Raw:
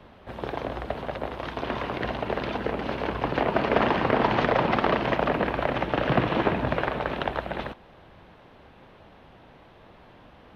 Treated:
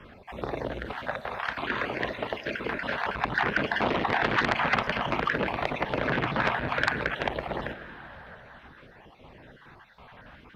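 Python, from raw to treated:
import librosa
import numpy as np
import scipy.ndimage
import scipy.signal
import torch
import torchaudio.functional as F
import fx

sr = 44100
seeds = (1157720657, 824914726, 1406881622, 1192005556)

y = fx.spec_dropout(x, sr, seeds[0], share_pct=34)
y = fx.peak_eq(y, sr, hz=1600.0, db=8.5, octaves=0.85)
y = fx.rev_plate(y, sr, seeds[1], rt60_s=4.3, hf_ratio=0.9, predelay_ms=0, drr_db=12.5)
y = fx.filter_lfo_notch(y, sr, shape='sine', hz=0.57, low_hz=310.0, high_hz=1600.0, q=1.8)
y = fx.low_shelf(y, sr, hz=200.0, db=-9.0, at=(0.9, 3.11))
y = fx.transformer_sat(y, sr, knee_hz=2300.0)
y = F.gain(torch.from_numpy(y), 1.5).numpy()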